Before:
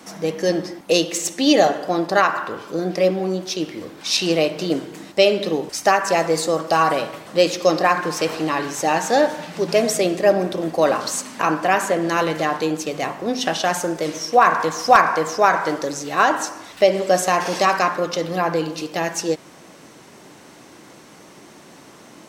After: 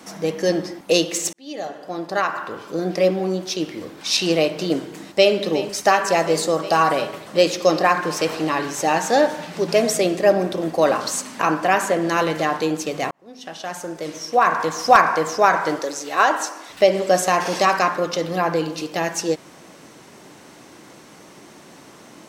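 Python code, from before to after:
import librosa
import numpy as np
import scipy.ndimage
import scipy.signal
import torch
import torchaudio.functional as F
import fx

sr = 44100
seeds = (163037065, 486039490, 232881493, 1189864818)

y = fx.echo_throw(x, sr, start_s=4.89, length_s=0.56, ms=360, feedback_pct=80, wet_db=-13.5)
y = fx.highpass(y, sr, hz=340.0, slope=12, at=(15.79, 16.7))
y = fx.edit(y, sr, fx.fade_in_span(start_s=1.33, length_s=1.57),
    fx.fade_in_span(start_s=13.11, length_s=1.78), tone=tone)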